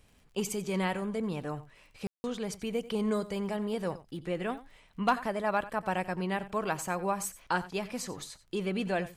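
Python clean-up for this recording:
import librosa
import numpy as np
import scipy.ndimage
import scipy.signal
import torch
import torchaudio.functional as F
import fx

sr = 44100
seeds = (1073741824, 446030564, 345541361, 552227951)

y = fx.fix_declip(x, sr, threshold_db=-17.0)
y = fx.fix_declick_ar(y, sr, threshold=6.5)
y = fx.fix_ambience(y, sr, seeds[0], print_start_s=0.0, print_end_s=0.5, start_s=2.07, end_s=2.24)
y = fx.fix_echo_inverse(y, sr, delay_ms=90, level_db=-16.5)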